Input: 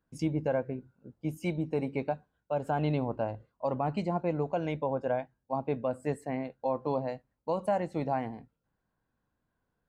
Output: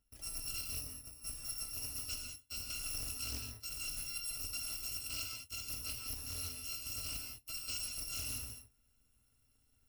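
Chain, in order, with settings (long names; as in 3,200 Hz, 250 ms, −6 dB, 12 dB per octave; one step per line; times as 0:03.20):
samples in bit-reversed order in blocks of 256 samples
low-shelf EQ 340 Hz +8 dB
reversed playback
downward compressor 6 to 1, threshold −43 dBFS, peak gain reduction 17.5 dB
reversed playback
reverb whose tail is shaped and stops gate 230 ms flat, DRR 0 dB
highs frequency-modulated by the lows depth 0.16 ms
level +2.5 dB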